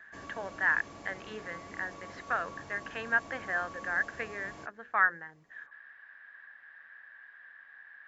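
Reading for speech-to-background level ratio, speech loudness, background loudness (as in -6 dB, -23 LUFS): 14.5 dB, -33.0 LUFS, -47.5 LUFS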